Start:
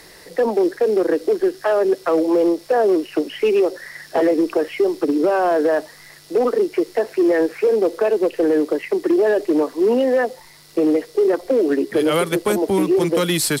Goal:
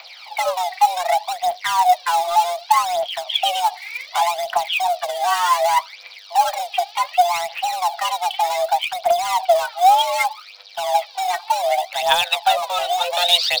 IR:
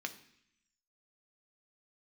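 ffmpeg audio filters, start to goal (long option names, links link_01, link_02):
-filter_complex "[0:a]highpass=frequency=190:width_type=q:width=0.5412,highpass=frequency=190:width_type=q:width=1.307,lowpass=frequency=3600:width_type=q:width=0.5176,lowpass=frequency=3600:width_type=q:width=0.7071,lowpass=frequency=3600:width_type=q:width=1.932,afreqshift=350,asplit=2[link_01][link_02];[link_02]asoftclip=type=hard:threshold=-24dB,volume=-7dB[link_03];[link_01][link_03]amix=inputs=2:normalize=0,aphaser=in_gain=1:out_gain=1:delay=2.7:decay=0.69:speed=0.66:type=triangular,aexciter=amount=3.1:drive=5.2:freq=2900,highshelf=frequency=3000:gain=11,volume=-6.5dB"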